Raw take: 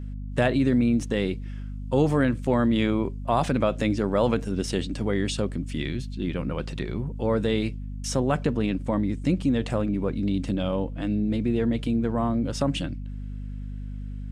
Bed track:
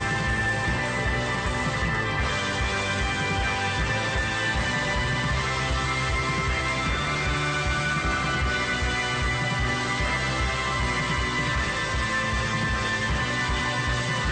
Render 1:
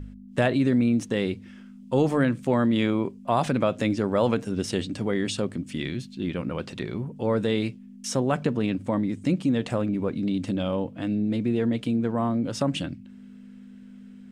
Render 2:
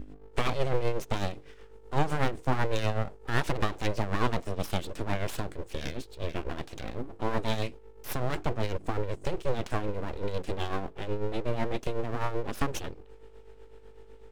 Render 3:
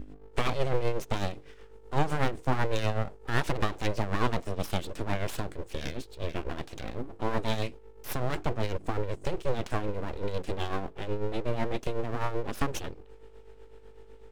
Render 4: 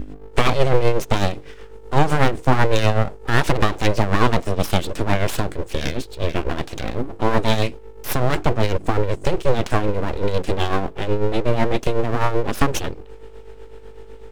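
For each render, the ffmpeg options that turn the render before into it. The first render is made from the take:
-af "bandreject=f=50:t=h:w=4,bandreject=f=100:t=h:w=4,bandreject=f=150:t=h:w=4"
-af "aeval=exprs='abs(val(0))':c=same,tremolo=f=8:d=0.59"
-af anull
-af "volume=11.5dB,alimiter=limit=-1dB:level=0:latency=1"

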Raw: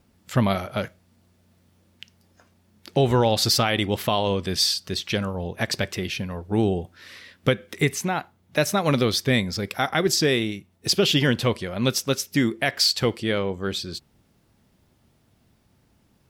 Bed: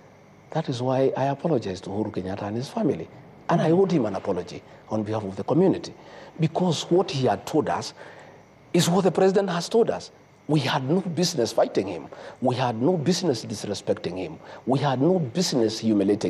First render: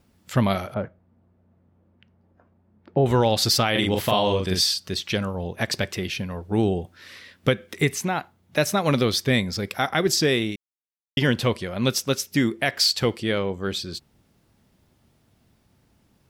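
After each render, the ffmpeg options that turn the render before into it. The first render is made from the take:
-filter_complex "[0:a]asettb=1/sr,asplit=3[a][b][c];[a]atrim=end=0.744[d];[b]atrim=start=0.74:end=3.06,asetpts=PTS-STARTPTS,afade=t=in:d=0.004:c=qsin,afade=t=out:st=2.316:d=0.004:c=qsin,lowpass=1.1k[e];[c]atrim=start=3.056[f];[d][e]acrossfade=d=0.004:c1=hsin:c2=qsin[g];[g][f]acrossfade=d=0.004:c1=qsin:c2=hsin,asettb=1/sr,asplit=3[h][i][j];[h]atrim=end=3.714[k];[i]atrim=start=3.71:end=4.61,asetpts=PTS-STARTPTS,afade=t=in:d=0.004:c=qsin,afade=t=out:st=0.896:d=0.004:c=qsin,asplit=2[l][m];[m]adelay=43,volume=-2.5dB[n];[l][n]amix=inputs=2:normalize=0,atrim=end_sample=39690[o];[j]atrim=start=4.606[p];[k][o]acrossfade=d=0.004:c1=hsin:c2=qsin[q];[q][p]acrossfade=d=0.004:c1=qsin:c2=hsin,asplit=3[r][s][t];[r]atrim=end=10.56,asetpts=PTS-STARTPTS,afade=t=out:st=10.556:d=0.004:c=hsin[u];[s]atrim=start=10.56:end=11.17,asetpts=PTS-STARTPTS,volume=0[v];[t]atrim=start=11.17,asetpts=PTS-STARTPTS,afade=t=in:d=0.004:c=hsin[w];[u][v][w]concat=n=3:v=0:a=1"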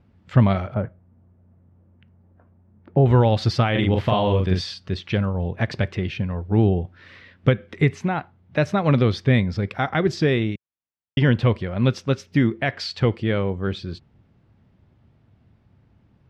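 -af "lowpass=2.6k,equalizer=f=100:w=0.81:g=8.5"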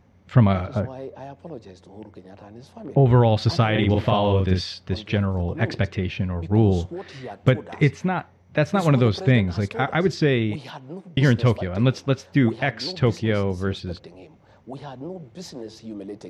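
-filter_complex "[1:a]volume=-14dB[a];[0:a][a]amix=inputs=2:normalize=0"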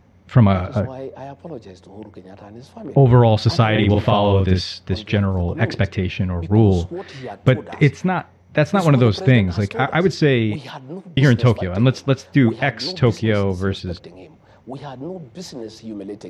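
-af "volume=4dB,alimiter=limit=-2dB:level=0:latency=1"

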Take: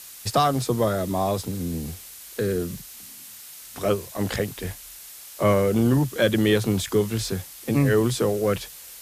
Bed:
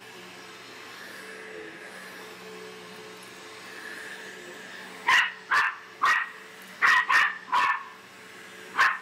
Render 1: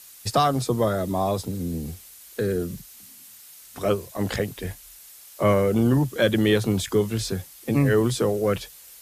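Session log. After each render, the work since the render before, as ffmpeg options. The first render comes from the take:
-af "afftdn=nr=6:nf=-43"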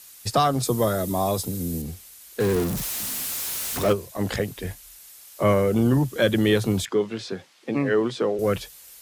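-filter_complex "[0:a]asettb=1/sr,asplit=3[a][b][c];[a]atrim=end=0.634[d];[b]atrim=start=0.63:end=1.82,asetpts=PTS-STARTPTS,afade=t=in:d=0.004:c=qsin,afade=t=out:st=1.186:d=0.004:c=qsin,highshelf=f=6.5k:g=11.5[e];[c]atrim=start=1.816[f];[d][e]acrossfade=d=0.004:c1=hsin:c2=qsin[g];[g][f]acrossfade=d=0.004:c1=qsin:c2=hsin,asettb=1/sr,asplit=3[h][i][j];[h]atrim=end=2.404[k];[i]atrim=start=2.4:end=3.93,asetpts=PTS-STARTPTS,afade=t=in:d=0.004:c=qsin,afade=t=out:st=1.526:d=0.004:c=qsin,aeval=exprs='val(0)+0.5*0.0596*sgn(val(0))':c=same[l];[j]atrim=start=3.926[m];[k][l]acrossfade=d=0.004:c1=hsin:c2=qsin[n];[n][m]acrossfade=d=0.004:c1=qsin:c2=hsin,asettb=1/sr,asplit=3[o][p][q];[o]atrim=end=6.854[r];[p]atrim=start=6.85:end=8.39,asetpts=PTS-STARTPTS,afade=t=in:d=0.004:c=qsin,afade=t=out:st=1.536:d=0.004:c=qsin,highpass=240,lowpass=3.8k[s];[q]atrim=start=8.386[t];[r][s]acrossfade=d=0.004:c1=hsin:c2=qsin[u];[u][t]acrossfade=d=0.004:c1=qsin:c2=hsin"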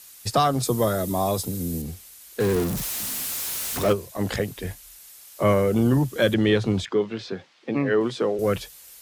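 -filter_complex "[0:a]asettb=1/sr,asplit=3[a][b][c];[a]atrim=end=6.344[d];[b]atrim=start=6.34:end=8.01,asetpts=PTS-STARTPTS,afade=t=in:d=0.004:c=qsin,afade=t=out:st=1.666:d=0.004:c=qsin,lowpass=4.9k[e];[c]atrim=start=8.006[f];[d][e]acrossfade=d=0.004:c1=hsin:c2=qsin[g];[g][f]acrossfade=d=0.004:c1=qsin:c2=hsin"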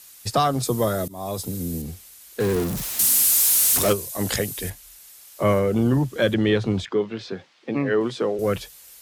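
-filter_complex "[0:a]asettb=1/sr,asplit=3[a][b][c];[a]atrim=end=2.994[d];[b]atrim=start=2.99:end=4.7,asetpts=PTS-STARTPTS,afade=t=in:d=0.004:c=qsin,afade=t=out:st=1.706:d=0.004:c=qsin,equalizer=f=11k:t=o:w=2.1:g=13.5[e];[c]atrim=start=4.696[f];[d][e]acrossfade=d=0.004:c1=hsin:c2=qsin[g];[g][f]acrossfade=d=0.004:c1=qsin:c2=hsin,asettb=1/sr,asplit=3[h][i][j];[h]atrim=end=5.594[k];[i]atrim=start=5.59:end=7.21,asetpts=PTS-STARTPTS,afade=t=in:d=0.004:c=qsin,afade=t=out:st=1.616:d=0.004:c=qsin,highshelf=f=7.8k:g=-7[l];[j]atrim=start=7.206[m];[k][l]acrossfade=d=0.004:c1=hsin:c2=qsin[n];[n][m]acrossfade=d=0.004:c1=qsin:c2=hsin,asplit=2[o][p];[o]atrim=end=1.08,asetpts=PTS-STARTPTS,afade=t=out:st=1.076:d=0.004:c=hsin:silence=0.0794328[q];[p]atrim=start=1.08,asetpts=PTS-STARTPTS,afade=t=in:d=0.43:silence=0.0794328[r];[q][r]concat=n=2:v=0:a=1"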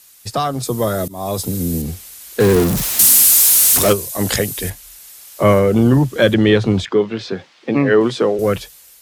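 -af "dynaudnorm=f=270:g=7:m=11.5dB"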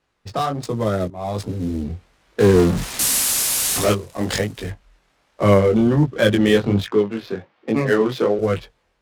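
-af "flanger=delay=18:depth=5.1:speed=1.3,adynamicsmooth=sensitivity=5.5:basefreq=1.2k"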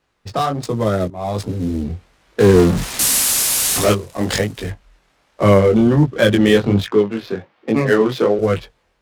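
-af "volume=3dB,alimiter=limit=-2dB:level=0:latency=1"

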